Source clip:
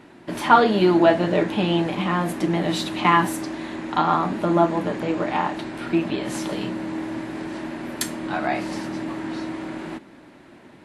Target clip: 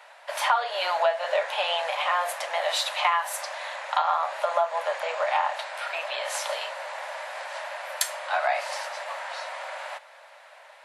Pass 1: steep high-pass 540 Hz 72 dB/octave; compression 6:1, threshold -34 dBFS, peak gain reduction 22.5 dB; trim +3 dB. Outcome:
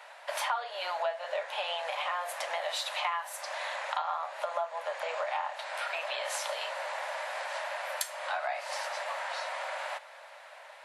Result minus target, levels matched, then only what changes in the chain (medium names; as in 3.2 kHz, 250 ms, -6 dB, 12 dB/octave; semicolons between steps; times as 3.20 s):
compression: peak gain reduction +9 dB
change: compression 6:1, threshold -23 dBFS, peak gain reduction 13.5 dB